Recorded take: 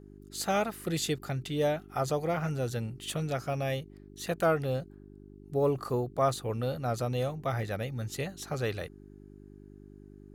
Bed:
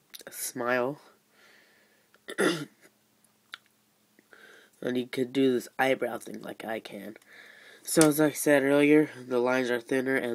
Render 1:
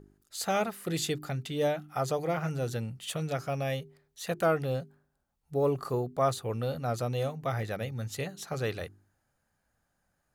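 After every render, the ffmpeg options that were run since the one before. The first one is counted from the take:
-af "bandreject=f=50:t=h:w=4,bandreject=f=100:t=h:w=4,bandreject=f=150:t=h:w=4,bandreject=f=200:t=h:w=4,bandreject=f=250:t=h:w=4,bandreject=f=300:t=h:w=4,bandreject=f=350:t=h:w=4,bandreject=f=400:t=h:w=4"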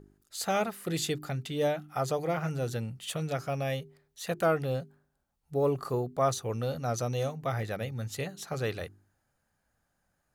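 -filter_complex "[0:a]asettb=1/sr,asplit=3[a][b][c];[a]atrim=end=6.324[d];[b]atrim=start=6.32:end=7.34,asetpts=PTS-STARTPTS,afade=t=in:d=0.004:c=qsin,afade=t=out:st=1.016:d=0.004:c=qsin,equalizer=f=6k:w=5.6:g=12[e];[c]atrim=start=7.336[f];[d][e]acrossfade=d=0.004:c1=hsin:c2=qsin[g];[g][f]acrossfade=d=0.004:c1=qsin:c2=hsin"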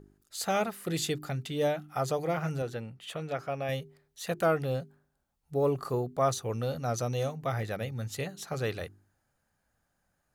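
-filter_complex "[0:a]asettb=1/sr,asplit=3[a][b][c];[a]atrim=end=2.624[d];[b]atrim=start=2.62:end=3.69,asetpts=PTS-STARTPTS,afade=t=in:d=0.004:c=qsin,afade=t=out:st=1.066:d=0.004:c=qsin,bass=f=250:g=-7,treble=f=4k:g=-11[e];[c]atrim=start=3.686[f];[d][e]acrossfade=d=0.004:c1=hsin:c2=qsin[g];[g][f]acrossfade=d=0.004:c1=qsin:c2=hsin"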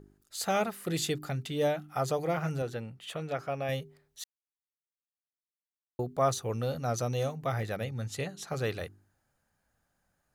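-filter_complex "[0:a]asettb=1/sr,asplit=3[a][b][c];[a]atrim=end=7.844[d];[b]atrim=start=7.84:end=8.5,asetpts=PTS-STARTPTS,afade=t=in:d=0.004:c=qsin,afade=t=out:st=0.656:d=0.004:c=qsin,lowpass=11k[e];[c]atrim=start=8.496[f];[d][e]acrossfade=d=0.004:c1=hsin:c2=qsin[g];[g][f]acrossfade=d=0.004:c1=qsin:c2=hsin,asplit=3[h][i][j];[h]atrim=end=4.24,asetpts=PTS-STARTPTS,afade=t=out:st=4.236:d=0.004:c=hsin[k];[i]atrim=start=4.24:end=5.99,asetpts=PTS-STARTPTS,volume=0[l];[j]atrim=start=5.99,asetpts=PTS-STARTPTS,afade=t=in:d=0.004:c=hsin[m];[k][l][m]concat=n=3:v=0:a=1"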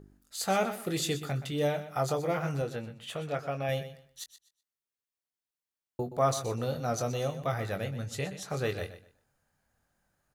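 -filter_complex "[0:a]asplit=2[a][b];[b]adelay=21,volume=-8.5dB[c];[a][c]amix=inputs=2:normalize=0,aecho=1:1:124|248|372:0.224|0.0515|0.0118"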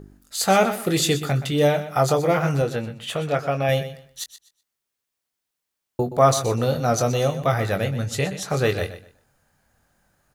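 -af "volume=10.5dB"

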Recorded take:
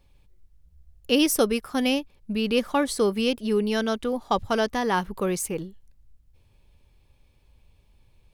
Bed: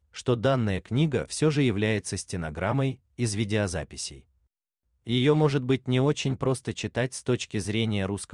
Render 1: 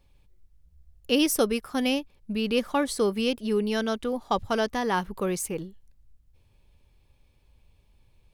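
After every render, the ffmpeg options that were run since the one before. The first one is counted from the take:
-af "volume=-2dB"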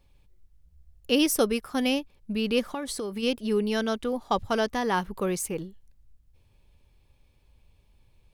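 -filter_complex "[0:a]asplit=3[a][b][c];[a]afade=t=out:st=2.67:d=0.02[d];[b]acompressor=threshold=-28dB:ratio=12:attack=3.2:release=140:knee=1:detection=peak,afade=t=in:st=2.67:d=0.02,afade=t=out:st=3.22:d=0.02[e];[c]afade=t=in:st=3.22:d=0.02[f];[d][e][f]amix=inputs=3:normalize=0"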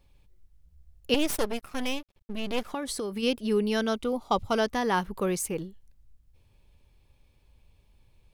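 -filter_complex "[0:a]asettb=1/sr,asplit=3[a][b][c];[a]atrim=end=1.144[d];[b]atrim=start=1.14:end=2.74,asetpts=PTS-STARTPTS,afade=t=in:d=0.004:c=qsin,afade=t=out:st=1.596:d=0.004:c=qsin,aeval=exprs='max(val(0),0)':c=same[e];[c]atrim=start=2.736[f];[d][e]acrossfade=d=0.004:c1=hsin:c2=qsin[g];[g][f]acrossfade=d=0.004:c1=qsin:c2=hsin,asettb=1/sr,asplit=3[h][i][j];[h]atrim=end=3.944[k];[i]atrim=start=3.94:end=4.56,asetpts=PTS-STARTPTS,afade=t=in:d=0.004:c=qsin,afade=t=out:st=0.616:d=0.004:c=qsin,asuperstop=centerf=1700:order=4:qfactor=4.5[l];[j]atrim=start=4.556[m];[k][l]acrossfade=d=0.004:c1=hsin:c2=qsin[n];[n][m]acrossfade=d=0.004:c1=qsin:c2=hsin"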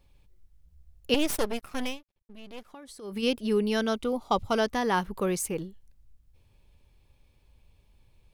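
-filter_complex "[0:a]asplit=3[a][b][c];[a]atrim=end=1.98,asetpts=PTS-STARTPTS,afade=t=out:st=1.84:d=0.14:silence=0.211349[d];[b]atrim=start=1.98:end=3.01,asetpts=PTS-STARTPTS,volume=-13.5dB[e];[c]atrim=start=3.01,asetpts=PTS-STARTPTS,afade=t=in:d=0.14:silence=0.211349[f];[d][e][f]concat=n=3:v=0:a=1"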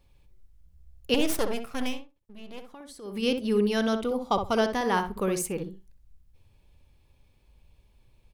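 -filter_complex "[0:a]asplit=2[a][b];[b]adelay=63,lowpass=f=1.4k:p=1,volume=-5.5dB,asplit=2[c][d];[d]adelay=63,lowpass=f=1.4k:p=1,volume=0.18,asplit=2[e][f];[f]adelay=63,lowpass=f=1.4k:p=1,volume=0.18[g];[a][c][e][g]amix=inputs=4:normalize=0"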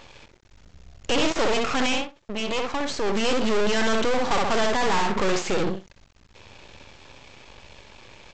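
-filter_complex "[0:a]asplit=2[a][b];[b]highpass=f=720:p=1,volume=38dB,asoftclip=type=tanh:threshold=-11dB[c];[a][c]amix=inputs=2:normalize=0,lowpass=f=3.7k:p=1,volume=-6dB,aresample=16000,aeval=exprs='max(val(0),0)':c=same,aresample=44100"

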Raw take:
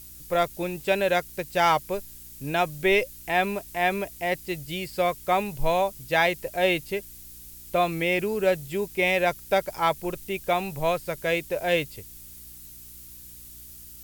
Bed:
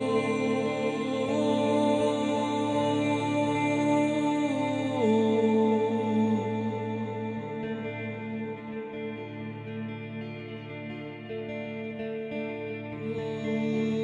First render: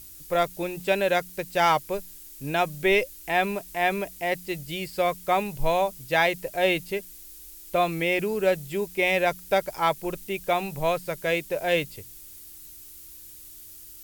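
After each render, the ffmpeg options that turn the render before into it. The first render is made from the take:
-af "bandreject=f=60:t=h:w=4,bandreject=f=120:t=h:w=4,bandreject=f=180:t=h:w=4,bandreject=f=240:t=h:w=4"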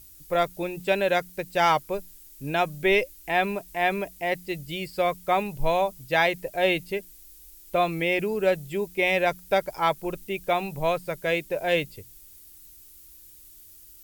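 -af "afftdn=nr=6:nf=-45"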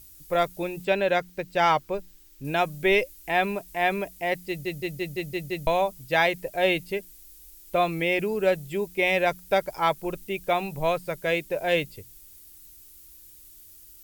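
-filter_complex "[0:a]asettb=1/sr,asplit=3[a][b][c];[a]atrim=end=0.854[d];[b]atrim=start=0.85:end=2.45,asetpts=PTS-STARTPTS,afade=t=in:d=0.004:c=qsin,afade=t=out:st=1.596:d=0.004:c=qsin,equalizer=f=12k:w=0.62:g=-11[e];[c]atrim=start=2.446[f];[d][e]acrossfade=d=0.004:c1=hsin:c2=qsin[g];[g][f]acrossfade=d=0.004:c1=qsin:c2=hsin,asplit=8[h][i][j][k][l][m][n][o];[h]atrim=end=4.652[p];[i]atrim=start=4.478:end=4.652[q];[j]atrim=start=4.478:end=4.652[r];[k]atrim=start=4.478:end=4.652[s];[l]atrim=start=4.478:end=4.652[t];[m]atrim=start=4.478:end=4.652[u];[n]atrim=start=4.478:end=4.652[v];[o]atrim=start=5.668[w];[p][q]acrossfade=d=0.004:c1=hsin:c2=hsin[x];[x][r]acrossfade=d=0.004:c1=hsin:c2=hsin[y];[y][s]acrossfade=d=0.004:c1=hsin:c2=hsin[z];[z][t]acrossfade=d=0.004:c1=hsin:c2=hsin[aa];[aa][u]acrossfade=d=0.004:c1=hsin:c2=hsin[ab];[ab][v]acrossfade=d=0.004:c1=hsin:c2=hsin[ac];[ac][w]acrossfade=d=0.004:c1=hsin:c2=hsin"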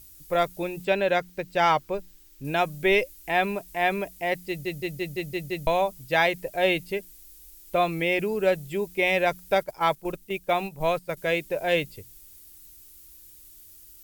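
-filter_complex "[0:a]asettb=1/sr,asplit=3[a][b][c];[a]atrim=end=9.554[d];[b]atrim=start=9.55:end=11.17,asetpts=PTS-STARTPTS,afade=t=in:d=0.004:c=qsin,afade=t=out:st=1.616:d=0.004:c=qsin,agate=range=-8dB:threshold=-33dB:ratio=16:release=100:detection=peak[e];[c]atrim=start=11.166[f];[d][e]acrossfade=d=0.004:c1=hsin:c2=qsin[g];[g][f]acrossfade=d=0.004:c1=qsin:c2=hsin"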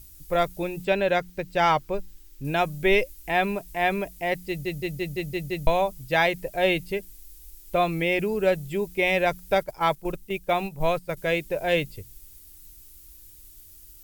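-af "lowshelf=f=110:g=10"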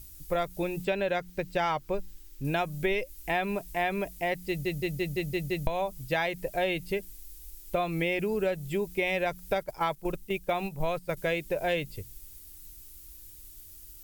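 -af "acompressor=threshold=-25dB:ratio=6"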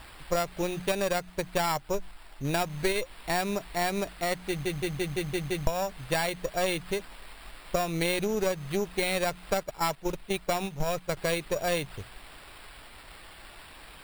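-af "acrusher=samples=7:mix=1:aa=0.000001,aeval=exprs='0.224*(cos(1*acos(clip(val(0)/0.224,-1,1)))-cos(1*PI/2))+0.0316*(cos(4*acos(clip(val(0)/0.224,-1,1)))-cos(4*PI/2))':c=same"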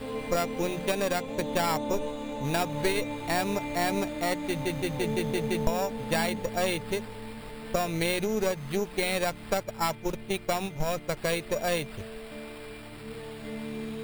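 -filter_complex "[1:a]volume=-8.5dB[a];[0:a][a]amix=inputs=2:normalize=0"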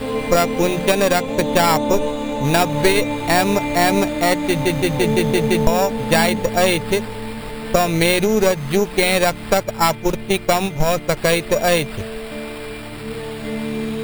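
-af "volume=12dB,alimiter=limit=-1dB:level=0:latency=1"

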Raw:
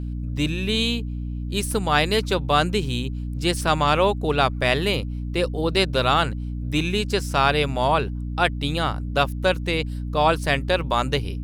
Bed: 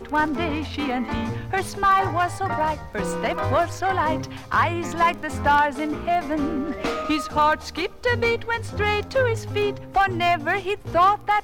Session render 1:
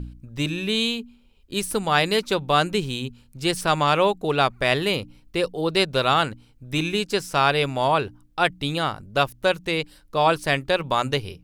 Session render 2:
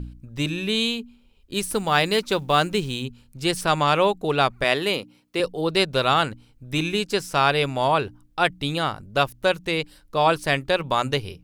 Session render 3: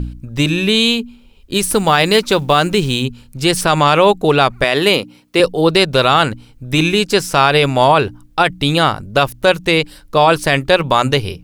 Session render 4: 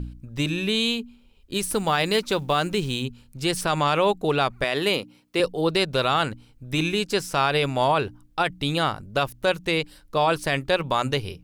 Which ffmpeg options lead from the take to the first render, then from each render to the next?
-af "bandreject=f=60:t=h:w=4,bandreject=f=120:t=h:w=4,bandreject=f=180:t=h:w=4,bandreject=f=240:t=h:w=4,bandreject=f=300:t=h:w=4"
-filter_complex "[0:a]asettb=1/sr,asplit=3[a][b][c];[a]atrim=end=1.544[d];[b]atrim=start=1.54:end=3.03,asetpts=PTS-STARTPTS,afade=t=in:d=0.004:c=qsin,afade=t=out:st=1.486:d=0.004:c=qsin,acrusher=bits=8:mode=log:mix=0:aa=0.000001[e];[c]atrim=start=3.026[f];[d][e]acrossfade=d=0.004:c1=hsin:c2=qsin[g];[g][f]acrossfade=d=0.004:c1=qsin:c2=hsin,asettb=1/sr,asplit=3[h][i][j];[h]atrim=end=4.644[k];[i]atrim=start=4.64:end=5.4,asetpts=PTS-STARTPTS,afade=t=in:d=0.004:c=qsin,afade=t=out:st=0.756:d=0.004:c=qsin,highpass=210[l];[j]atrim=start=5.396[m];[k][l]acrossfade=d=0.004:c1=hsin:c2=qsin[n];[n][m]acrossfade=d=0.004:c1=qsin:c2=hsin"
-af "alimiter=level_in=11.5dB:limit=-1dB:release=50:level=0:latency=1"
-af "volume=-10dB"

